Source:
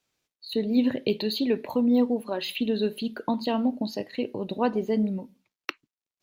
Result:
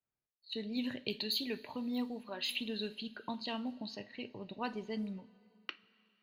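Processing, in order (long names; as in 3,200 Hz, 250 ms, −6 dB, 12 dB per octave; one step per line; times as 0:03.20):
guitar amp tone stack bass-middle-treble 5-5-5
low-pass that shuts in the quiet parts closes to 890 Hz, open at −36.5 dBFS
coupled-rooms reverb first 0.27 s, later 3 s, from −18 dB, DRR 12 dB
level +4 dB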